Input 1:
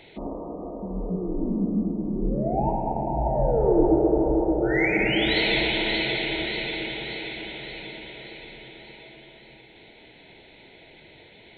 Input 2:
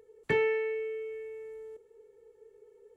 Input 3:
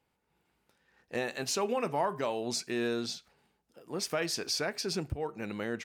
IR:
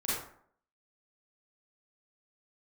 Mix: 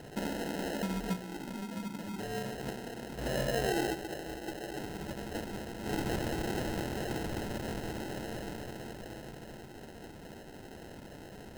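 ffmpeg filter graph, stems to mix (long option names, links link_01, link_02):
-filter_complex "[0:a]equalizer=frequency=200:width_type=o:width=0.38:gain=5,acompressor=threshold=-35dB:ratio=3,volume=1.5dB,asplit=2[link_01][link_02];[link_02]volume=-20.5dB[link_03];[1:a]adelay=1900,volume=-19dB,asplit=2[link_04][link_05];[link_05]volume=-4.5dB[link_06];[2:a]bass=frequency=250:gain=8,treble=frequency=4000:gain=9,alimiter=limit=-20.5dB:level=0:latency=1,volume=-18dB,asplit=2[link_07][link_08];[link_08]apad=whole_len=510589[link_09];[link_01][link_09]sidechaincompress=threshold=-59dB:ratio=6:attack=11:release=171[link_10];[3:a]atrim=start_sample=2205[link_11];[link_03][link_06]amix=inputs=2:normalize=0[link_12];[link_12][link_11]afir=irnorm=-1:irlink=0[link_13];[link_10][link_04][link_07][link_13]amix=inputs=4:normalize=0,highpass=63,acrusher=samples=38:mix=1:aa=0.000001"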